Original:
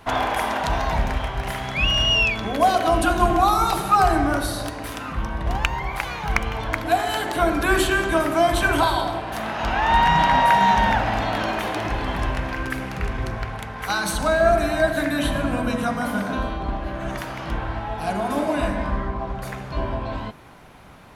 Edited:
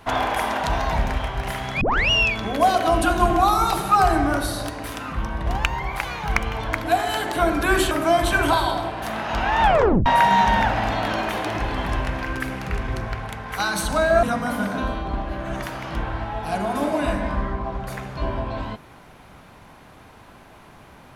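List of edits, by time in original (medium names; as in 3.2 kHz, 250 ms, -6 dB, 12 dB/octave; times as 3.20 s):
1.81 s: tape start 0.29 s
7.91–8.21 s: delete
9.92 s: tape stop 0.44 s
14.53–15.78 s: delete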